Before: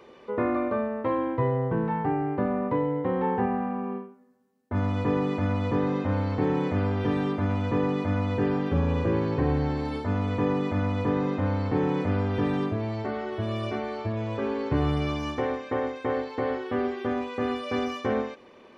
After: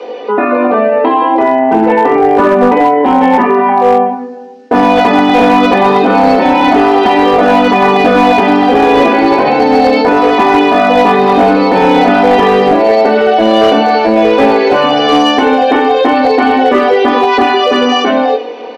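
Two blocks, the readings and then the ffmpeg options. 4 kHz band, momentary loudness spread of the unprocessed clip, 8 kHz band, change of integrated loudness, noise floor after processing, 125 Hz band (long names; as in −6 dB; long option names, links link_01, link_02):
+26.0 dB, 5 LU, can't be measured, +19.5 dB, −22 dBFS, +1.5 dB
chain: -filter_complex "[0:a]equalizer=frequency=1700:width=0.54:gain=-6.5,aecho=1:1:4.1:0.97,acrossover=split=1100[link_01][link_02];[link_01]acontrast=27[link_03];[link_03][link_02]amix=inputs=2:normalize=0,flanger=delay=18:depth=3.7:speed=0.29,highpass=frequency=350:width=0.5412,highpass=frequency=350:width=1.3066,equalizer=frequency=770:width_type=q:width=4:gain=6,equalizer=frequency=1100:width_type=q:width=4:gain=-6,equalizer=frequency=2600:width_type=q:width=4:gain=4,lowpass=frequency=5300:width=0.5412,lowpass=frequency=5300:width=1.3066,aecho=1:1:107:0.112,afftfilt=real='re*lt(hypot(re,im),0.224)':imag='im*lt(hypot(re,im),0.224)':win_size=1024:overlap=0.75,dynaudnorm=framelen=150:gausssize=17:maxgain=11.5dB,volume=17.5dB,asoftclip=hard,volume=-17.5dB,alimiter=level_in=26.5dB:limit=-1dB:release=50:level=0:latency=1,volume=-1dB"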